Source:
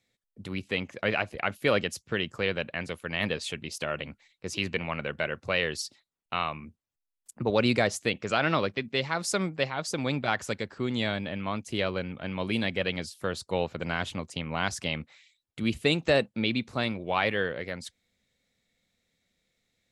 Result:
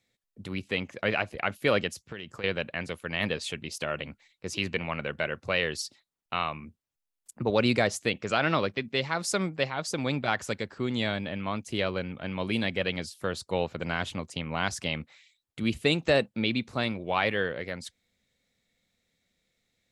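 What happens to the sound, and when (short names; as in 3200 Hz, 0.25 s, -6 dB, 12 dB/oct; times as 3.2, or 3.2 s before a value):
1.88–2.44 compressor 4:1, threshold -36 dBFS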